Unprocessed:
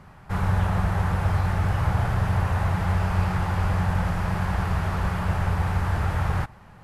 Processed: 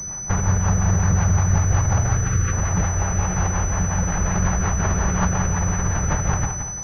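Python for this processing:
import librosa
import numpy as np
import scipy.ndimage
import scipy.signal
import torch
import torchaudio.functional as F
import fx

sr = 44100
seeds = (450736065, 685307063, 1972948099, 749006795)

p1 = fx.spec_erase(x, sr, start_s=2.13, length_s=0.4, low_hz=530.0, high_hz=1100.0)
p2 = fx.over_compress(p1, sr, threshold_db=-27.0, ratio=-0.5)
p3 = p1 + (p2 * 10.0 ** (2.0 / 20.0))
p4 = fx.rotary(p3, sr, hz=5.5)
p5 = p4 + fx.echo_feedback(p4, sr, ms=172, feedback_pct=38, wet_db=-7.0, dry=0)
y = fx.pwm(p5, sr, carrier_hz=6000.0)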